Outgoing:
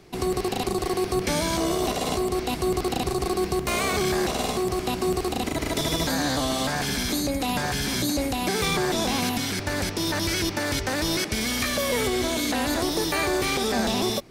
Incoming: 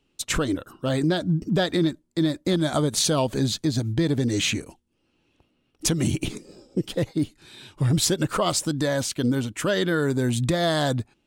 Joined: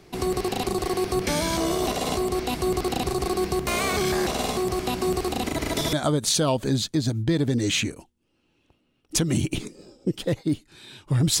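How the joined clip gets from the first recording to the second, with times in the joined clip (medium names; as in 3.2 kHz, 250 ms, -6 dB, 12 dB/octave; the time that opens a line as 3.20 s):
outgoing
5.93 s: go over to incoming from 2.63 s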